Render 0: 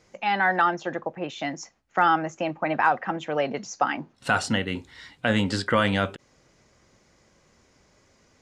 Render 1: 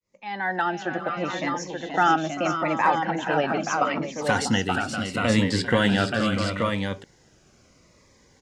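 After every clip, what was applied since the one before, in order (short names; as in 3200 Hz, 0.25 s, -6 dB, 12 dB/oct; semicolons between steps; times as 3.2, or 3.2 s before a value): opening faded in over 0.89 s; tapped delay 0.395/0.477/0.642/0.878 s -15.5/-7.5/-11/-5 dB; cascading phaser falling 0.76 Hz; gain +2.5 dB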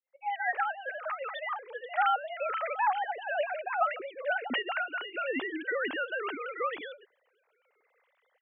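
sine-wave speech; low shelf 420 Hz -8.5 dB; gain -6.5 dB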